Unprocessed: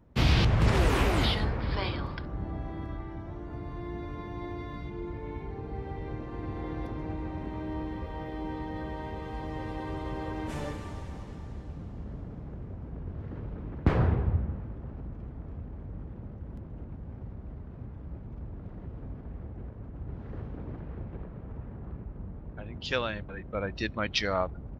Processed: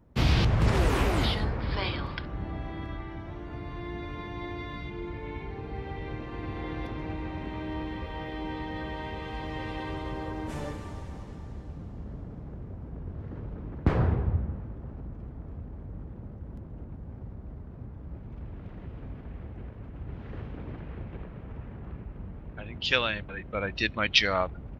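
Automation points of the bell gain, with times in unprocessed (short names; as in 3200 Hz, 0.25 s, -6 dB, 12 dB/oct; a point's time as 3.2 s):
bell 2800 Hz 1.6 oct
1.5 s -1.5 dB
2.24 s +9.5 dB
9.81 s +9.5 dB
10.41 s -1.5 dB
17.98 s -1.5 dB
18.5 s +9.5 dB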